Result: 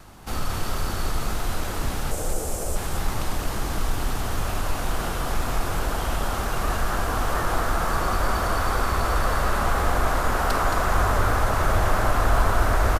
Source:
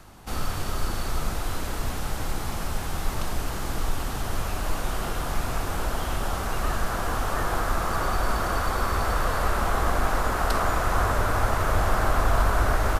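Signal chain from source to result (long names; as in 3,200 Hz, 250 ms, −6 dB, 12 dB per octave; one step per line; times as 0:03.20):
tape wow and flutter 29 cents
in parallel at −11.5 dB: soft clipping −26.5 dBFS, distortion −8 dB
0:02.11–0:02.76: on the sum: octave-band graphic EQ 125/250/500/1,000/2,000/4,000/8,000 Hz −5/−5/+11/−7/−6/−8/+10 dB
on a send: single-tap delay 221 ms −6 dB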